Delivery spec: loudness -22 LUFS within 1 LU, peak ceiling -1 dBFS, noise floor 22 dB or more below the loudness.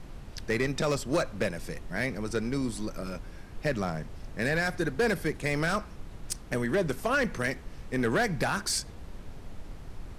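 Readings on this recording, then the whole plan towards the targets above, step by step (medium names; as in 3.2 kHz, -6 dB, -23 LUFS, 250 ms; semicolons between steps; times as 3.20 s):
clipped samples 0.9%; clipping level -20.0 dBFS; noise floor -45 dBFS; noise floor target -53 dBFS; loudness -30.5 LUFS; peak level -20.0 dBFS; loudness target -22.0 LUFS
-> clip repair -20 dBFS; noise print and reduce 8 dB; trim +8.5 dB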